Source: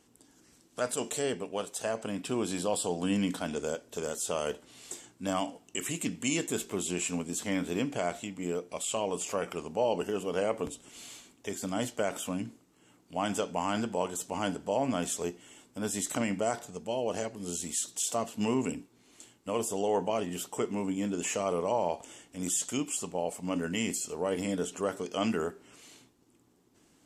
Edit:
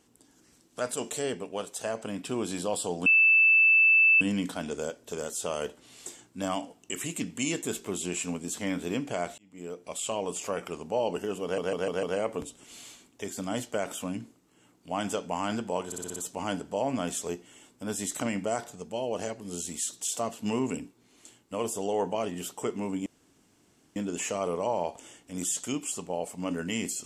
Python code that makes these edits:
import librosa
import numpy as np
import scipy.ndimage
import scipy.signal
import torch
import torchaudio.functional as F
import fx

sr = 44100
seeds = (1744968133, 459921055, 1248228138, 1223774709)

y = fx.edit(x, sr, fx.insert_tone(at_s=3.06, length_s=1.15, hz=2640.0, db=-16.5),
    fx.fade_in_span(start_s=8.23, length_s=0.6),
    fx.stutter(start_s=10.28, slice_s=0.15, count=5),
    fx.stutter(start_s=14.11, slice_s=0.06, count=6),
    fx.insert_room_tone(at_s=21.01, length_s=0.9), tone=tone)